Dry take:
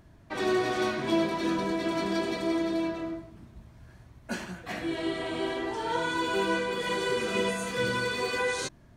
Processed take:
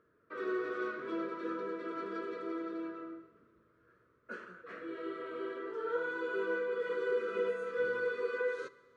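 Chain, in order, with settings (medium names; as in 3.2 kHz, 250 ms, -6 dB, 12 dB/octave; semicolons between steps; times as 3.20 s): two resonant band-passes 780 Hz, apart 1.5 oct; Schroeder reverb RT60 1.8 s, combs from 33 ms, DRR 17 dB; trim +1.5 dB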